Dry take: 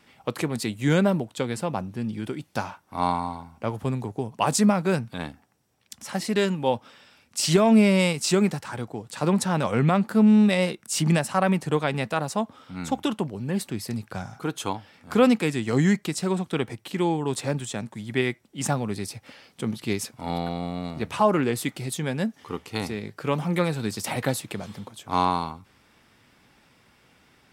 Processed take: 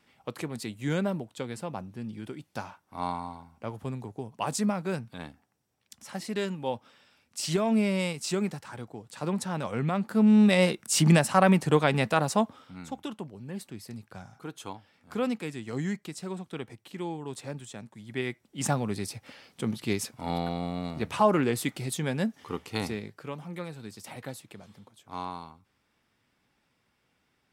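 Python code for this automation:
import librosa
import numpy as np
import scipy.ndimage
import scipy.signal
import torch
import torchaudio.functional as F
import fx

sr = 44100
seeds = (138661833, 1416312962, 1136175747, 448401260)

y = fx.gain(x, sr, db=fx.line((9.89, -8.0), (10.66, 1.5), (12.43, 1.5), (12.86, -11.0), (17.97, -11.0), (18.64, -2.0), (22.93, -2.0), (23.36, -14.0)))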